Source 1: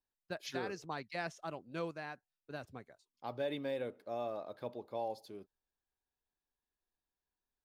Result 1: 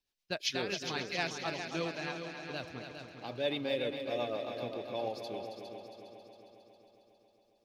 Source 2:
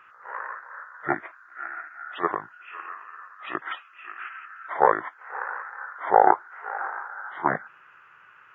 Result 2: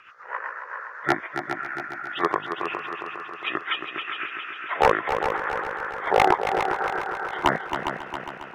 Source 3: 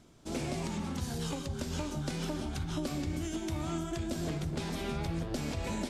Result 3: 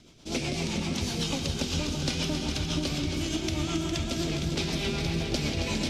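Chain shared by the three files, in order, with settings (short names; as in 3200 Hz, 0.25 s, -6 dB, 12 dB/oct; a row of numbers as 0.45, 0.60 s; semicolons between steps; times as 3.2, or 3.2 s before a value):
band shelf 3700 Hz +8.5 dB; rotary speaker horn 8 Hz; wavefolder -12.5 dBFS; multi-head echo 0.136 s, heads second and third, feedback 59%, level -8 dB; gain +5 dB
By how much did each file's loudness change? +5.0, +1.0, +6.5 LU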